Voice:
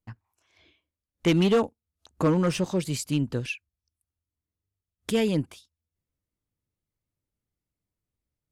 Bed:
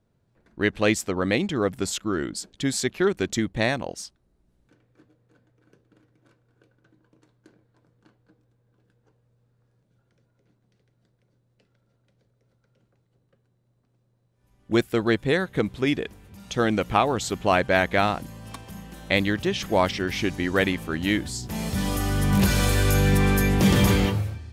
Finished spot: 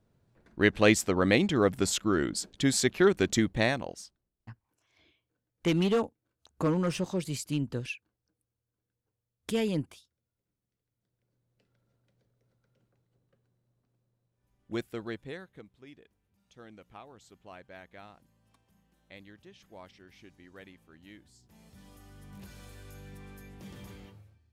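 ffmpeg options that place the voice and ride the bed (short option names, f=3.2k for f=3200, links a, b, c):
-filter_complex "[0:a]adelay=4400,volume=-5dB[a];[1:a]volume=15.5dB,afade=t=out:st=3.38:d=0.94:silence=0.0841395,afade=t=in:st=10.92:d=0.88:silence=0.158489,afade=t=out:st=13.48:d=2.19:silence=0.0749894[b];[a][b]amix=inputs=2:normalize=0"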